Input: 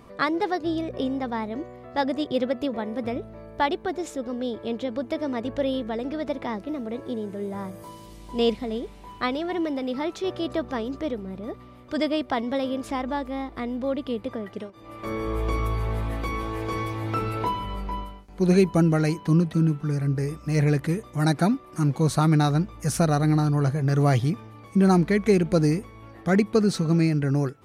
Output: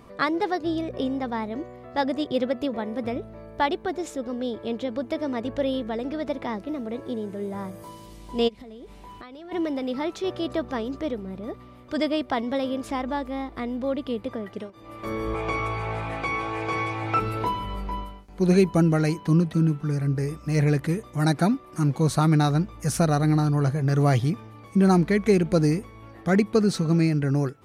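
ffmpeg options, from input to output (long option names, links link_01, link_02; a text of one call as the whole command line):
ffmpeg -i in.wav -filter_complex "[0:a]asplit=3[link_01][link_02][link_03];[link_01]afade=type=out:start_time=8.47:duration=0.02[link_04];[link_02]acompressor=threshold=-38dB:ratio=16:attack=3.2:release=140:knee=1:detection=peak,afade=type=in:start_time=8.47:duration=0.02,afade=type=out:start_time=9.51:duration=0.02[link_05];[link_03]afade=type=in:start_time=9.51:duration=0.02[link_06];[link_04][link_05][link_06]amix=inputs=3:normalize=0,asettb=1/sr,asplit=3[link_07][link_08][link_09];[link_07]atrim=end=15.344[link_10];[link_08]atrim=start=15.34:end=17.2,asetpts=PTS-STARTPTS,afade=type=in:duration=0.004:curve=qsin,afade=type=out:start_time=1.856:duration=0.004:curve=qsin,highpass=110,equalizer=frequency=150:width_type=q:width=4:gain=5,equalizer=frequency=230:width_type=q:width=4:gain=-9,equalizer=frequency=780:width_type=q:width=4:gain=9,equalizer=frequency=1400:width_type=q:width=4:gain=6,equalizer=frequency=2400:width_type=q:width=4:gain=10,lowpass=frequency=8900:width=0.5412,lowpass=frequency=8900:width=1.3066[link_11];[link_09]atrim=start=17.196[link_12];[link_10][link_11]acrossfade=duration=0.004:curve1=hsin:curve2=qsin[link_13];[link_13][link_12]acrossfade=duration=0.004:curve1=qsin:curve2=hsin" out.wav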